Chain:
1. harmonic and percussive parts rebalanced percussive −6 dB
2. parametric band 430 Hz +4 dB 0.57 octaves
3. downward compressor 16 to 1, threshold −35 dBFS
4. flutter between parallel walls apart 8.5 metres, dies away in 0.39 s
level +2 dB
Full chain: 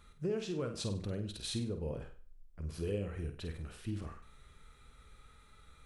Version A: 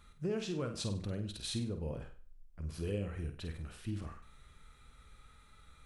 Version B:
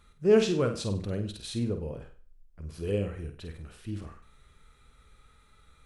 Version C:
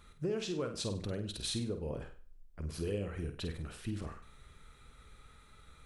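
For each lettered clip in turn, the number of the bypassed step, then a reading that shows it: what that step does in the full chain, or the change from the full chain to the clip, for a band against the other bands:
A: 2, 500 Hz band −2.0 dB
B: 3, average gain reduction 3.0 dB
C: 1, 125 Hz band −3.0 dB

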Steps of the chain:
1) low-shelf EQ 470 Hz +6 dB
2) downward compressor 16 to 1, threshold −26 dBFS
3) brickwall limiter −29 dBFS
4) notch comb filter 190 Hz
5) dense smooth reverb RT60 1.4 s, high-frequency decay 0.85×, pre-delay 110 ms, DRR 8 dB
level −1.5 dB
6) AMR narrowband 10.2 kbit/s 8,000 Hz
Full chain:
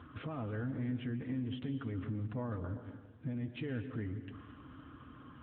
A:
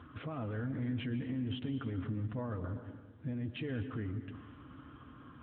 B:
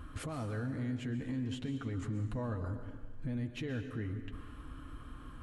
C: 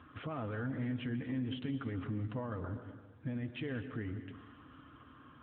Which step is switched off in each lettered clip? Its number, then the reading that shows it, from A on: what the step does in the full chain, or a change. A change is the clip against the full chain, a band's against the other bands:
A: 2, average gain reduction 8.0 dB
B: 6, change in momentary loudness spread −3 LU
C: 1, 2 kHz band +2.5 dB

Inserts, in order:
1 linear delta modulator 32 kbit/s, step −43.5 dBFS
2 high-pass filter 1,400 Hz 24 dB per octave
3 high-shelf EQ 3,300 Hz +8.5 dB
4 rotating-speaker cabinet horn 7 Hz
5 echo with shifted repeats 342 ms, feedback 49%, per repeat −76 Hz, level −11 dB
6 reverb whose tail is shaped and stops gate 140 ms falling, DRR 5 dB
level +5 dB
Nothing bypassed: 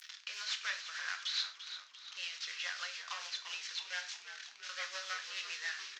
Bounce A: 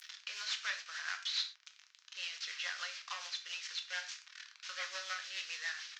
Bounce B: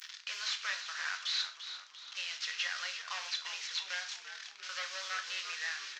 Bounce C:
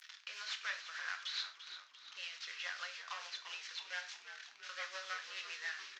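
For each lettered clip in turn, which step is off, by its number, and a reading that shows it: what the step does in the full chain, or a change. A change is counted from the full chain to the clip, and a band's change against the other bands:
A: 5, echo-to-direct ratio −3.5 dB to −5.0 dB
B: 4, change in crest factor −1.5 dB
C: 3, 8 kHz band −5.0 dB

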